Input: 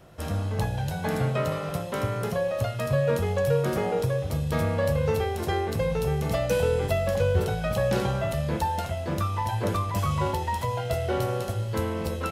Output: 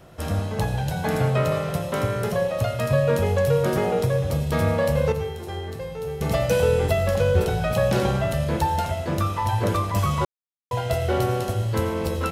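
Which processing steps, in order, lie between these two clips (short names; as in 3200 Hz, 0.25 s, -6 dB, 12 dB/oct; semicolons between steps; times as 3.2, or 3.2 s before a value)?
5.12–6.21 resonator 89 Hz, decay 0.82 s, harmonics all, mix 80%; reverb RT60 0.70 s, pre-delay 81 ms, DRR 10 dB; 10.25–10.71 mute; gain +3.5 dB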